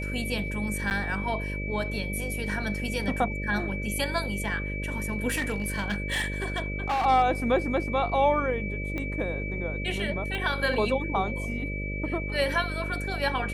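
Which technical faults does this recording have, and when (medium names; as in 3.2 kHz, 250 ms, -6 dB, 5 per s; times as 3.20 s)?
buzz 50 Hz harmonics 12 -33 dBFS
whine 2.3 kHz -35 dBFS
0.90–0.91 s: dropout 9.7 ms
5.28–7.06 s: clipped -23.5 dBFS
8.98 s: pop -20 dBFS
10.35 s: pop -20 dBFS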